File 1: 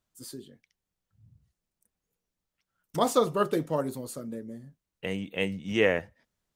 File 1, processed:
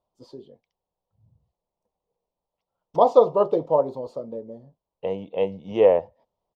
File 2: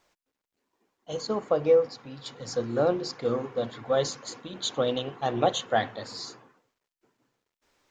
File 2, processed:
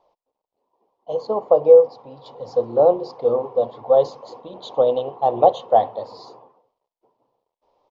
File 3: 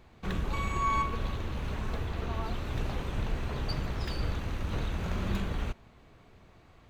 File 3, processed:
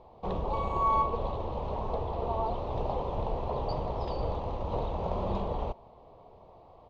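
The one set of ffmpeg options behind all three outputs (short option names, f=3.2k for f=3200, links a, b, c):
-af "firequalizer=gain_entry='entry(280,0);entry(500,13);entry(960,13);entry(1500,-14);entry(3100,-4);entry(4900,-6);entry(9300,-30)':delay=0.05:min_phase=1,volume=-2.5dB"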